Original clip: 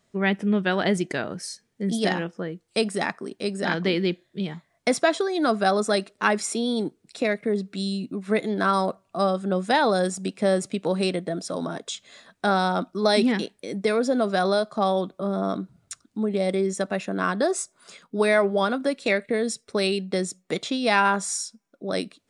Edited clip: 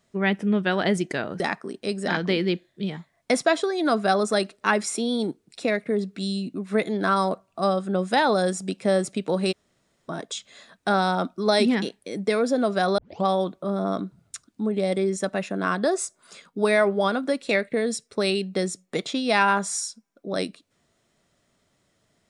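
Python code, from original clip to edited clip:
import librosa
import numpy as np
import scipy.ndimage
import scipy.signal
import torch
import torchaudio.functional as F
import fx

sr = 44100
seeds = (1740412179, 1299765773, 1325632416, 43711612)

y = fx.edit(x, sr, fx.cut(start_s=1.4, length_s=1.57),
    fx.room_tone_fill(start_s=11.09, length_s=0.57, crossfade_s=0.02),
    fx.tape_start(start_s=14.55, length_s=0.27), tone=tone)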